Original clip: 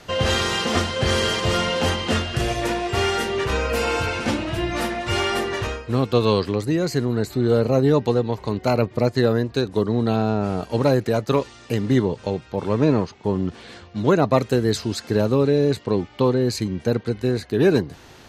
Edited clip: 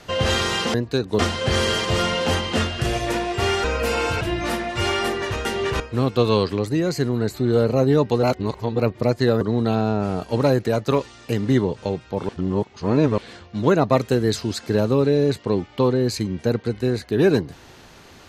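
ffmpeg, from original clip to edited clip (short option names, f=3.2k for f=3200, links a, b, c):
-filter_complex "[0:a]asplit=12[a][b][c][d][e][f][g][h][i][j][k][l];[a]atrim=end=0.742[m];[b]atrim=start=9.368:end=9.822[n];[c]atrim=start=0.738:end=3.192[o];[d]atrim=start=3.538:end=4.112[p];[e]atrim=start=4.518:end=5.762[q];[f]atrim=start=3.188:end=3.542[r];[g]atrim=start=5.758:end=8.192[s];[h]atrim=start=8.188:end=8.752,asetpts=PTS-STARTPTS,areverse[t];[i]atrim=start=8.748:end=9.372[u];[j]atrim=start=9.818:end=12.702[v];[k]atrim=start=12.698:end=13.592,asetpts=PTS-STARTPTS,areverse[w];[l]atrim=start=13.588[x];[m][n]acrossfade=d=0.004:c1=hsin:c2=hsin[y];[y][o]acrossfade=d=0.004:c1=hsin:c2=hsin[z];[z][p]acrossfade=d=0.004:c1=hsin:c2=hsin[aa];[aa][q]acrossfade=d=0.004:c1=hsin:c2=hsin[ab];[ab][r]acrossfade=d=0.004:c1=hsin:c2=hsin[ac];[ac][s]acrossfade=d=0.004:c1=hsin:c2=hsin[ad];[ad][t]acrossfade=d=0.004:c1=hsin:c2=hsin[ae];[ae][u]acrossfade=d=0.004:c1=hsin:c2=hsin[af];[af][v]acrossfade=d=0.004:c1=hsin:c2=hsin[ag];[ag][w]acrossfade=d=0.004:c1=hsin:c2=hsin[ah];[ah][x]acrossfade=d=0.004:c1=hsin:c2=hsin"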